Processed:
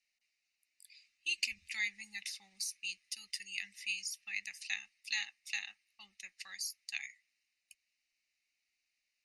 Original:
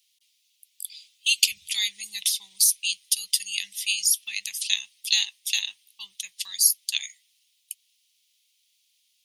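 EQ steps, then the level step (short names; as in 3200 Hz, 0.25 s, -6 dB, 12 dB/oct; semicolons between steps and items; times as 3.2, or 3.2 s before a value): LPF 2500 Hz 12 dB/oct; fixed phaser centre 670 Hz, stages 8; +3.0 dB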